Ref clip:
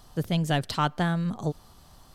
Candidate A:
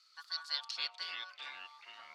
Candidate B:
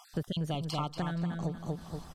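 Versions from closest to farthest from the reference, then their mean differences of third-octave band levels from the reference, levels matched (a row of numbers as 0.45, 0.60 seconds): B, A; 7.0, 14.5 decibels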